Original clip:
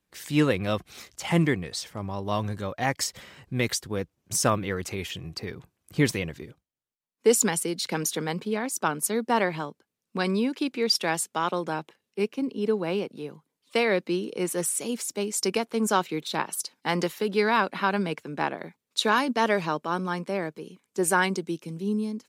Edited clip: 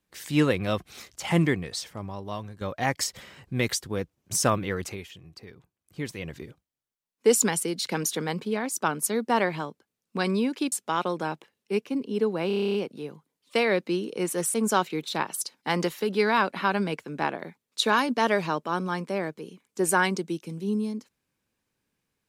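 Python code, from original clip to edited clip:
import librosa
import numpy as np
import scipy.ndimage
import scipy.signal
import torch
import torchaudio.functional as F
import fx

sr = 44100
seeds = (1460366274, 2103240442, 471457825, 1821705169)

y = fx.edit(x, sr, fx.fade_out_to(start_s=1.75, length_s=0.86, floor_db=-14.0),
    fx.fade_down_up(start_s=4.84, length_s=1.52, db=-11.0, fade_s=0.22),
    fx.cut(start_s=10.72, length_s=0.47),
    fx.stutter(start_s=12.94, slice_s=0.03, count=10),
    fx.cut(start_s=14.74, length_s=0.99), tone=tone)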